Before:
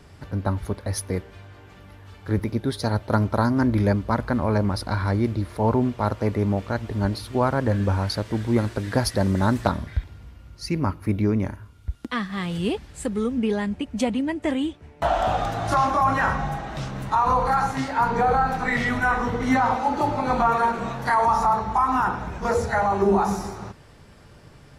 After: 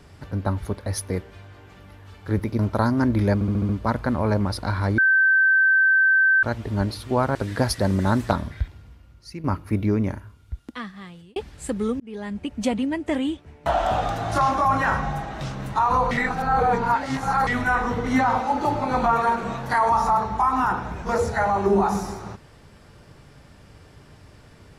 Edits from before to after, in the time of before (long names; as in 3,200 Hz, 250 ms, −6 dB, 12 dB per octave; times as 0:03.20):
0:02.59–0:03.18: remove
0:03.93: stutter 0.07 s, 6 plays
0:05.22–0:06.67: beep over 1,550 Hz −14 dBFS
0:07.59–0:08.71: remove
0:09.86–0:10.80: fade out, to −12 dB
0:11.50–0:12.72: fade out
0:13.36–0:13.88: fade in
0:17.47–0:18.83: reverse